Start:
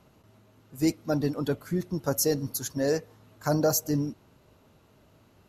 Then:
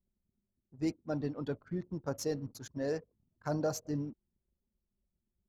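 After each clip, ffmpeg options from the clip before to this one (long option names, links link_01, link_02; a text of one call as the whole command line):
ffmpeg -i in.wav -af "adynamicsmooth=sensitivity=1.5:basefreq=4400,anlmdn=0.0398,volume=-8.5dB" out.wav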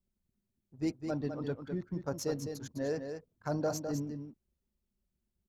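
ffmpeg -i in.wav -af "aecho=1:1:206:0.447" out.wav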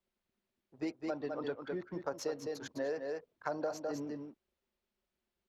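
ffmpeg -i in.wav -filter_complex "[0:a]acrossover=split=350 4400:gain=0.112 1 0.2[link_01][link_02][link_03];[link_01][link_02][link_03]amix=inputs=3:normalize=0,acompressor=threshold=-42dB:ratio=4,volume=7.5dB" out.wav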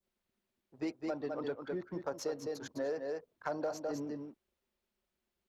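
ffmpeg -i in.wav -filter_complex "[0:a]adynamicequalizer=threshold=0.00126:dfrequency=2500:dqfactor=0.88:tfrequency=2500:tqfactor=0.88:attack=5:release=100:ratio=0.375:range=2:mode=cutabove:tftype=bell,asplit=2[link_01][link_02];[link_02]asoftclip=type=hard:threshold=-33dB,volume=-6.5dB[link_03];[link_01][link_03]amix=inputs=2:normalize=0,volume=-2.5dB" out.wav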